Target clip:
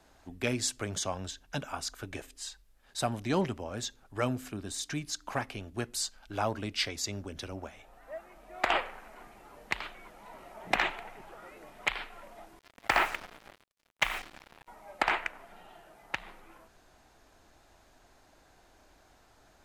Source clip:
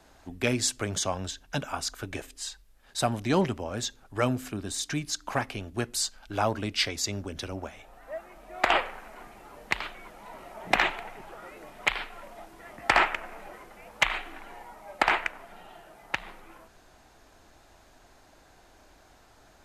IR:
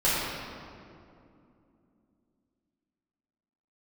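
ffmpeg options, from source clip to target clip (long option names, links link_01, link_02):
-filter_complex "[0:a]asettb=1/sr,asplit=3[link_01][link_02][link_03];[link_01]atrim=end=12.594[link_04];[link_02]atrim=start=12.59:end=14.68,asetpts=PTS-STARTPTS,afade=type=in:duration=0.004:curve=qsin,afade=type=out:start_time=2.086:duration=0.004:curve=qsin,acrusher=bits=5:mix=0:aa=0.5[link_05];[link_03]atrim=start=14.676[link_06];[link_04][link_05]acrossfade=duration=0.004:curve1=hsin:curve2=qsin[link_07];[link_07][link_06]acrossfade=duration=0.004:curve1=qsin:curve2=hsin,volume=-4.5dB"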